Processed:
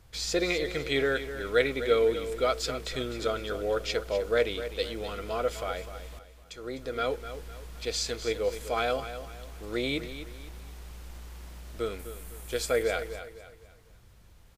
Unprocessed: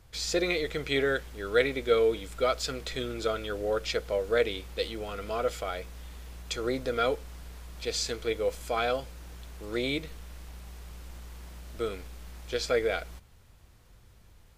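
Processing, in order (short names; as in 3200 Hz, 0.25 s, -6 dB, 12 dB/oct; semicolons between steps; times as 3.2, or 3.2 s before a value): 6.19–7.36 fade in; 11.99–12.83 resonant high shelf 7100 Hz +9.5 dB, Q 1.5; feedback echo 0.253 s, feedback 36%, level -11.5 dB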